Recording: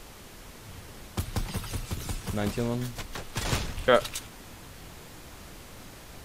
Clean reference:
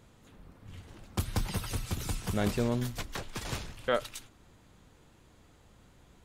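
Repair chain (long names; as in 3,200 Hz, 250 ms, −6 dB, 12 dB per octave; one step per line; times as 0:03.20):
0:03.76–0:03.88: high-pass filter 140 Hz 24 dB per octave
noise reduction from a noise print 13 dB
level 0 dB, from 0:03.37 −8 dB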